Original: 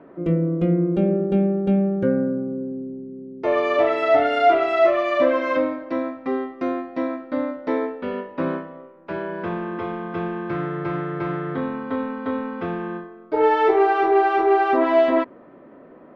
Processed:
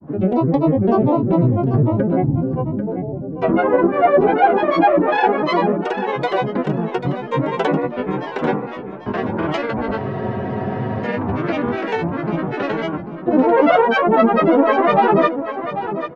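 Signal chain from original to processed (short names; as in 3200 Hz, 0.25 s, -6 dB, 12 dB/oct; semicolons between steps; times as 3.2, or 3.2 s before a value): treble ducked by the level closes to 1800 Hz, closed at -18 dBFS; in parallel at -0.5 dB: compressor, threshold -27 dBFS, peak gain reduction 15 dB; on the sum: grains, pitch spread up and down by 12 st; feedback echo 0.792 s, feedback 18%, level -10 dB; spectral freeze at 10, 1.03 s; gain +2.5 dB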